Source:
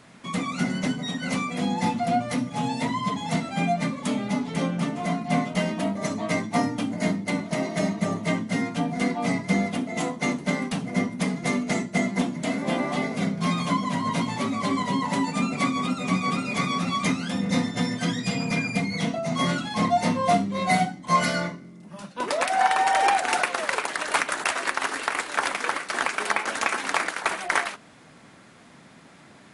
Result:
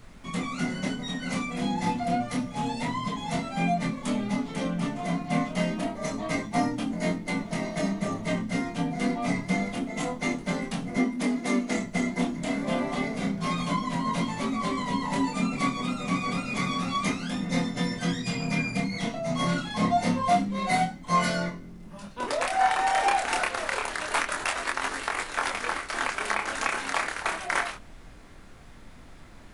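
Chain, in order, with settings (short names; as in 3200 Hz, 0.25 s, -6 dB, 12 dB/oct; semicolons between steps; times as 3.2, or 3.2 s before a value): chorus 0.28 Hz, depth 6.6 ms; added noise brown -48 dBFS; 10.97–11.77 resonant low shelf 190 Hz -7.5 dB, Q 3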